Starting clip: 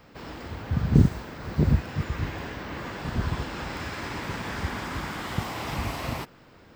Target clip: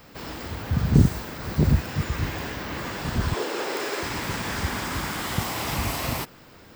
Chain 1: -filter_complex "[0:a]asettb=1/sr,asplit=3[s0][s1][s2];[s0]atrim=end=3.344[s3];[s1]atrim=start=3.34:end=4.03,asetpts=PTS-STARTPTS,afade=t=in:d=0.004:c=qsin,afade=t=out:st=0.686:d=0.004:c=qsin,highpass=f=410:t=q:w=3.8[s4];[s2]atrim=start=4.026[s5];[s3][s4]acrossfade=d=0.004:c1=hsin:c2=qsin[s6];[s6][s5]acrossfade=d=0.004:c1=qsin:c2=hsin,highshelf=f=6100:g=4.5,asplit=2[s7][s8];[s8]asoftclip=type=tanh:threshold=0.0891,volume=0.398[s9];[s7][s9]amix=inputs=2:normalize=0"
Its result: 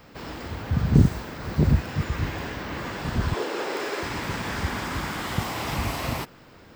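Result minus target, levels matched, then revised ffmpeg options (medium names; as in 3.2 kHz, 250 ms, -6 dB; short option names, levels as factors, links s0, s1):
8 kHz band -4.5 dB
-filter_complex "[0:a]asettb=1/sr,asplit=3[s0][s1][s2];[s0]atrim=end=3.344[s3];[s1]atrim=start=3.34:end=4.03,asetpts=PTS-STARTPTS,afade=t=in:d=0.004:c=qsin,afade=t=out:st=0.686:d=0.004:c=qsin,highpass=f=410:t=q:w=3.8[s4];[s2]atrim=start=4.026[s5];[s3][s4]acrossfade=d=0.004:c1=hsin:c2=qsin[s6];[s6][s5]acrossfade=d=0.004:c1=qsin:c2=hsin,highshelf=f=6100:g=13,asplit=2[s7][s8];[s8]asoftclip=type=tanh:threshold=0.0891,volume=0.398[s9];[s7][s9]amix=inputs=2:normalize=0"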